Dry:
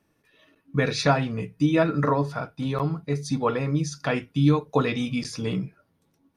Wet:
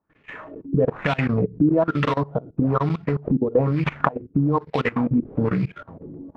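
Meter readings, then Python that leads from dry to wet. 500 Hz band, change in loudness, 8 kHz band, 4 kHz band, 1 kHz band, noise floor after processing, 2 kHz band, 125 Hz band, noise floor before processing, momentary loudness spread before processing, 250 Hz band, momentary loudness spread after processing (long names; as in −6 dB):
+3.0 dB, +2.5 dB, below −15 dB, −5.5 dB, +2.0 dB, −60 dBFS, +1.5 dB, +2.5 dB, −70 dBFS, 8 LU, +3.5 dB, 18 LU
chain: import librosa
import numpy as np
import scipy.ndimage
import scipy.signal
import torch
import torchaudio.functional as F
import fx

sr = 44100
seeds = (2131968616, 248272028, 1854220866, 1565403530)

y = fx.recorder_agc(x, sr, target_db=-10.5, rise_db_per_s=77.0, max_gain_db=30)
y = fx.sample_hold(y, sr, seeds[0], rate_hz=4800.0, jitter_pct=20)
y = fx.low_shelf(y, sr, hz=110.0, db=2.5)
y = fx.level_steps(y, sr, step_db=20)
y = fx.filter_lfo_lowpass(y, sr, shape='sine', hz=1.1, low_hz=330.0, high_hz=2500.0, q=2.9)
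y = y * librosa.db_to_amplitude(-1.0)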